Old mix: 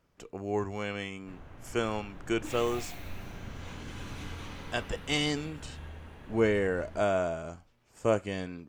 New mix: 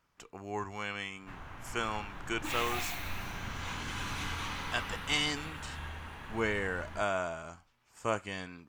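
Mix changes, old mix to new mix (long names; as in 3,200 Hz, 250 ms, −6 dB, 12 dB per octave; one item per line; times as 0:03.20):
background +7.5 dB
master: add low shelf with overshoot 730 Hz −7 dB, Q 1.5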